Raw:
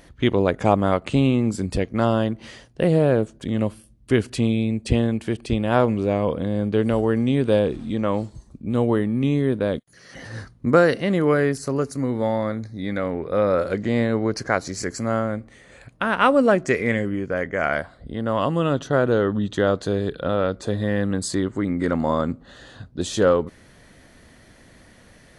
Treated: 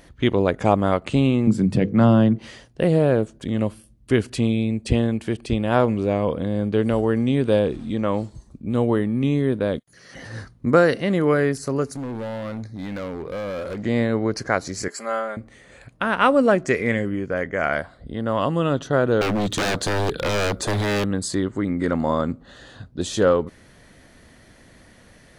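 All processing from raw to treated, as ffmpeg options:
-filter_complex "[0:a]asettb=1/sr,asplit=3[a][b][c];[a]atrim=end=1.474[d];[b]atrim=start=1.47:end=2.39,asetpts=PTS-STARTPTS,afade=t=in:d=0.004:c=qsin,afade=t=out:st=0.916:d=0.004:c=qsin,highpass=f=130:w=0.5412,highpass=f=130:w=1.3066,bass=f=250:g=14,treble=f=4k:g=-6,bandreject=f=50:t=h:w=6,bandreject=f=100:t=h:w=6,bandreject=f=150:t=h:w=6,bandreject=f=200:t=h:w=6,bandreject=f=250:t=h:w=6,bandreject=f=300:t=h:w=6,bandreject=f=350:t=h:w=6,bandreject=f=400:t=h:w=6,bandreject=f=450:t=h:w=6,bandreject=f=500:t=h:w=6[e];[c]atrim=start=2.386[f];[d][e]acrossfade=d=0.004:c1=hsin:c2=qsin[g];[g][f]acrossfade=d=0.004:c1=qsin:c2=hsin,asettb=1/sr,asplit=3[h][i][j];[h]atrim=end=11.924[k];[i]atrim=start=11.92:end=13.83,asetpts=PTS-STARTPTS,afade=t=in:d=0.004:c=qsin,afade=t=out:st=1.906:d=0.004:c=qsin,acompressor=threshold=-23dB:ratio=2.5:attack=3.2:release=140:knee=1:detection=peak,volume=26.5dB,asoftclip=hard,volume=-26.5dB[l];[j]atrim=start=13.826[m];[k][l]acrossfade=d=0.004:c1=hsin:c2=qsin[n];[n][m]acrossfade=d=0.004:c1=qsin:c2=hsin,asettb=1/sr,asplit=3[o][p][q];[o]atrim=end=14.884[r];[p]atrim=start=14.88:end=15.37,asetpts=PTS-STARTPTS,afade=t=in:d=0.004:c=qsin,afade=t=out:st=0.486:d=0.004:c=qsin,highpass=600,equalizer=f=6k:w=6.7:g=-12,aecho=1:1:5:0.71,atrim=end_sample=21609[s];[q]atrim=start=15.366[t];[r][s]acrossfade=d=0.004:c1=hsin:c2=qsin[u];[u][t]acrossfade=d=0.004:c1=qsin:c2=hsin,asettb=1/sr,asplit=3[v][w][x];[v]atrim=end=19.214[y];[w]atrim=start=19.21:end=21.04,asetpts=PTS-STARTPTS,afade=t=in:d=0.004:c=qsin,afade=t=out:st=1.826:d=0.004:c=qsin,highshelf=f=7.5k:g=10.5,acontrast=87,aeval=exprs='0.141*(abs(mod(val(0)/0.141+3,4)-2)-1)':c=same[z];[x]atrim=start=21.036[aa];[y][z]acrossfade=d=0.004:c1=hsin:c2=qsin[ab];[ab][aa]acrossfade=d=0.004:c1=qsin:c2=hsin"

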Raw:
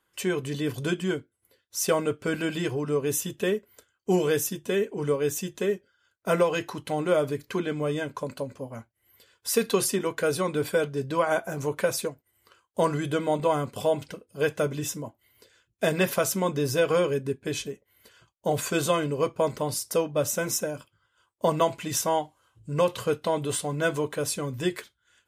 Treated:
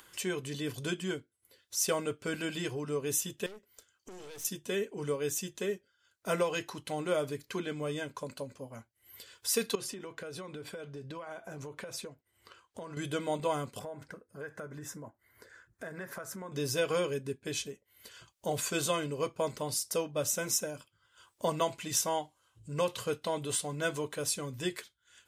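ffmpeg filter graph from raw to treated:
-filter_complex "[0:a]asettb=1/sr,asplit=3[a][b][c];[a]atrim=end=3.464[d];[b]atrim=start=3.46:end=4.45,asetpts=PTS-STARTPTS,afade=t=in:d=0.004:c=qsin,afade=t=out:st=0.986:d=0.004:c=qsin,equalizer=f=5.6k:w=1.8:g=4.5,acompressor=threshold=-31dB:ratio=4:attack=3.2:release=140:knee=1:detection=peak,aeval=exprs='(tanh(79.4*val(0)+0.65)-tanh(0.65))/79.4':c=same[e];[c]atrim=start=4.446[f];[d][e]acrossfade=d=0.004:c1=hsin:c2=qsin[g];[g][f]acrossfade=d=0.004:c1=qsin:c2=hsin,asettb=1/sr,asplit=3[h][i][j];[h]atrim=end=9.754[k];[i]atrim=start=9.75:end=12.97,asetpts=PTS-STARTPTS,afade=t=in:d=0.004:c=qsin,afade=t=out:st=3.216:d=0.004:c=qsin,lowpass=f=3k:p=1,acompressor=threshold=-31dB:ratio=12:attack=3.2:release=140:knee=1:detection=peak[l];[j]atrim=start=12.966[m];[k][l]acrossfade=d=0.004:c1=hsin:c2=qsin[n];[n][m]acrossfade=d=0.004:c1=qsin:c2=hsin,asettb=1/sr,asplit=3[o][p][q];[o]atrim=end=13.794[r];[p]atrim=start=13.79:end=16.52,asetpts=PTS-STARTPTS,afade=t=in:d=0.004:c=qsin,afade=t=out:st=2.726:d=0.004:c=qsin,highshelf=f=2.2k:t=q:w=3:g=-9,acompressor=threshold=-33dB:ratio=4:attack=3.2:release=140:knee=1:detection=peak[s];[q]atrim=start=16.516[t];[r][s]acrossfade=d=0.004:c1=hsin:c2=qsin[u];[u][t]acrossfade=d=0.004:c1=qsin:c2=hsin,highshelf=f=10k:g=-10,acompressor=mode=upward:threshold=-38dB:ratio=2.5,highshelf=f=3.3k:g=11.5,volume=-8dB"

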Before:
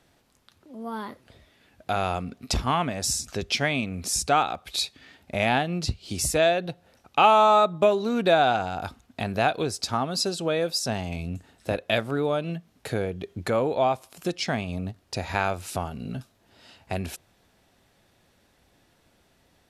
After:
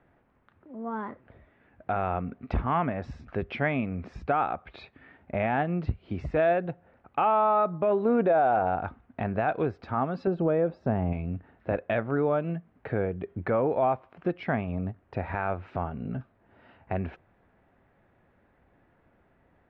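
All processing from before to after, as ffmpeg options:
-filter_complex "[0:a]asettb=1/sr,asplit=3[a][b][c];[a]atrim=end=8.054[d];[b]atrim=start=8.05:end=8.76,asetpts=PTS-STARTPTS,afade=t=in:d=0.004:c=qsin,afade=t=out:st=0.706:d=0.004:c=qsin,lowpass=8k,equalizer=f=560:t=o:w=1.5:g=8[e];[c]atrim=start=8.756[f];[d][e]acrossfade=d=0.004:c1=hsin:c2=qsin[g];[g][f]acrossfade=d=0.004:c1=qsin:c2=hsin,asettb=1/sr,asplit=3[h][i][j];[h]atrim=end=10.274[k];[i]atrim=start=10.27:end=11.13,asetpts=PTS-STARTPTS,afade=t=in:d=0.004:c=qsin,afade=t=out:st=0.856:d=0.004:c=qsin,acompressor=threshold=-28dB:ratio=2:attack=3.2:release=140:knee=1:detection=peak,tiltshelf=f=1.3k:g=7[l];[j]atrim=start=11.126[m];[k][l]acrossfade=d=0.004:c1=hsin:c2=qsin[n];[n][m]acrossfade=d=0.004:c1=qsin:c2=hsin,lowpass=f=2k:w=0.5412,lowpass=f=2k:w=1.3066,alimiter=limit=-16dB:level=0:latency=1:release=19"

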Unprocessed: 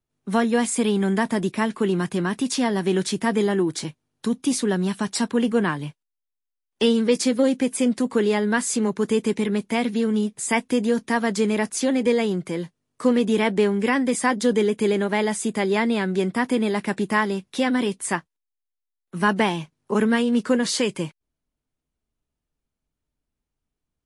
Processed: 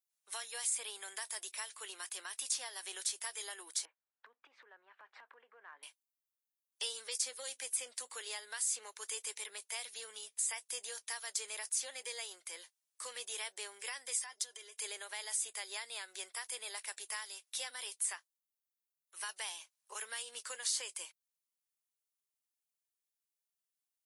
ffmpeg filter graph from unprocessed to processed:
-filter_complex "[0:a]asettb=1/sr,asplit=3[a][b][c];[a]atrim=end=3.854[d];[b]atrim=start=3.85:end=5.83,asetpts=PTS-STARTPTS,afade=t=in:d=0.004:c=qsin,afade=t=out:st=1.976:d=0.004:c=qsin,lowpass=f=1.8k:w=0.5412,lowpass=f=1.8k:w=1.3066,acompressor=threshold=-29dB:ratio=12:attack=3.2:release=140:knee=1:detection=peak[e];[c]atrim=start=5.826[f];[d][e]acrossfade=d=0.004:c1=hsin:c2=qsin[g];[g][f]acrossfade=d=0.004:c1=qsin:c2=hsin,asettb=1/sr,asplit=3[h][i][j];[h]atrim=end=14.184[k];[i]atrim=start=14.18:end=14.81,asetpts=PTS-STARTPTS,afade=t=in:d=0.004:c=qsin,afade=t=out:st=0.626:d=0.004:c=qsin,acompressor=threshold=-29dB:ratio=6:attack=3.2:release=140:knee=1:detection=peak,equalizer=f=5.5k:w=4.9:g=5.5,aecho=1:1:2.9:0.54,atrim=end_sample=27783[l];[j]atrim=start=14.806[m];[k][l]acrossfade=d=0.004:c1=hsin:c2=qsin[n];[n][m]acrossfade=d=0.004:c1=qsin:c2=hsin,highpass=f=510:w=0.5412,highpass=f=510:w=1.3066,aderivative,acrossover=split=1600|3800[o][p][q];[o]acompressor=threshold=-48dB:ratio=4[r];[p]acompressor=threshold=-50dB:ratio=4[s];[q]acompressor=threshold=-34dB:ratio=4[t];[r][s][t]amix=inputs=3:normalize=0"

